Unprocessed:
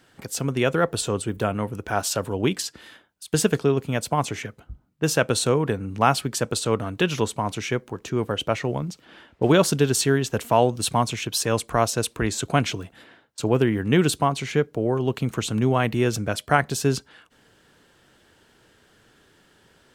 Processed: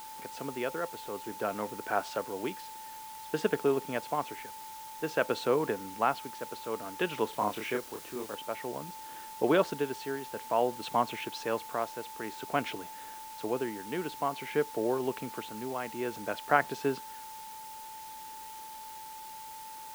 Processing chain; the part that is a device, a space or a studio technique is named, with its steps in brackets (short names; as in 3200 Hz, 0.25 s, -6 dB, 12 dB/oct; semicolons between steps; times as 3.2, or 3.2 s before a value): shortwave radio (BPF 300–2600 Hz; tremolo 0.54 Hz, depth 64%; whine 880 Hz -39 dBFS; white noise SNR 16 dB); 7.3–8.35 doubler 29 ms -3.5 dB; gain -4.5 dB